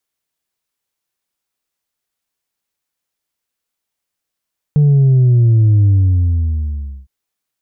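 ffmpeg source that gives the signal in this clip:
-f lavfi -i "aevalsrc='0.422*clip((2.31-t)/1.21,0,1)*tanh(1.26*sin(2*PI*150*2.31/log(65/150)*(exp(log(65/150)*t/2.31)-1)))/tanh(1.26)':d=2.31:s=44100"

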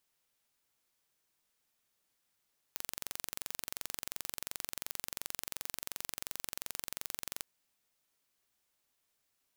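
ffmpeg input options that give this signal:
-f lavfi -i "aevalsrc='0.299*eq(mod(n,1934),0)':d=4.68:s=44100"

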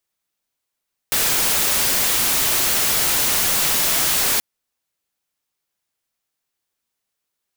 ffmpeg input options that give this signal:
-f lavfi -i "anoisesrc=c=white:a=0.206:d=3.28:r=44100:seed=1"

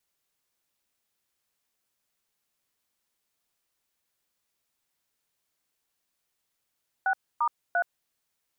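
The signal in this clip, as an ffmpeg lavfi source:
-f lavfi -i "aevalsrc='0.0596*clip(min(mod(t,0.345),0.073-mod(t,0.345))/0.002,0,1)*(eq(floor(t/0.345),0)*(sin(2*PI*770*mod(t,0.345))+sin(2*PI*1477*mod(t,0.345)))+eq(floor(t/0.345),1)*(sin(2*PI*941*mod(t,0.345))+sin(2*PI*1209*mod(t,0.345)))+eq(floor(t/0.345),2)*(sin(2*PI*697*mod(t,0.345))+sin(2*PI*1477*mod(t,0.345))))':d=1.035:s=44100"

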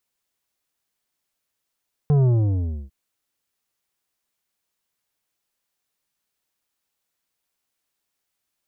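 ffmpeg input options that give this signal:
-f lavfi -i "aevalsrc='0.178*clip((0.8-t)/0.66,0,1)*tanh(2.99*sin(2*PI*150*0.8/log(65/150)*(exp(log(65/150)*t/0.8)-1)))/tanh(2.99)':d=0.8:s=44100"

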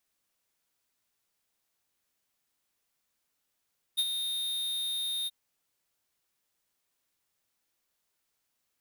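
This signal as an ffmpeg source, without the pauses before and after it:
-f lavfi -i "aevalsrc='0.0531*(2*lt(mod(3690*t,1),0.5)-1)':d=1.33:s=44100,afade=t=in:d=0.022,afade=t=out:st=0.022:d=0.047:silence=0.422,afade=t=out:st=1.3:d=0.03"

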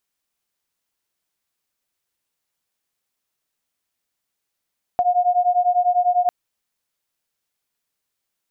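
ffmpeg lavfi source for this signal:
-f lavfi -i "aevalsrc='0.126*(sin(2*PI*711*t)+sin(2*PI*721*t))':d=1.3:s=44100"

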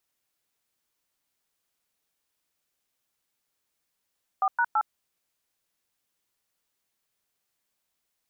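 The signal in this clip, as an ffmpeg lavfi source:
-f lavfi -i "aevalsrc='0.0708*clip(min(mod(t,0.166),0.06-mod(t,0.166))/0.002,0,1)*(eq(floor(t/0.166),0)*(sin(2*PI*770*mod(t,0.166))+sin(2*PI*1209*mod(t,0.166)))+eq(floor(t/0.166),1)*(sin(2*PI*941*mod(t,0.166))+sin(2*PI*1477*mod(t,0.166)))+eq(floor(t/0.166),2)*(sin(2*PI*852*mod(t,0.166))+sin(2*PI*1336*mod(t,0.166))))':d=0.498:s=44100"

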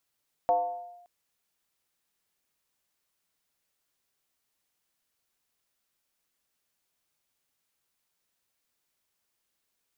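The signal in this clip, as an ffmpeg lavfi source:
-f lavfi -i "aevalsrc='0.119*pow(10,-3*t/0.96)*sin(2*PI*705*t+0.68*clip(1-t/0.57,0,1)*sin(2*PI*0.28*705*t))':d=0.57:s=44100"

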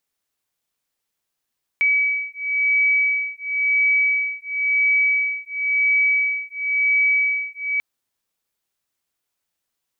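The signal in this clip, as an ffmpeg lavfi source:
-f lavfi -i "aevalsrc='0.1*(sin(2*PI*2280*t)+sin(2*PI*2280.96*t))':d=5.99:s=44100"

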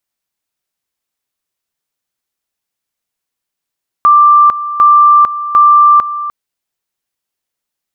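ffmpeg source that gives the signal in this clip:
-f lavfi -i "aevalsrc='pow(10,(-2.5-13.5*gte(mod(t,0.75),0.45))/20)*sin(2*PI*1180*t)':d=2.25:s=44100"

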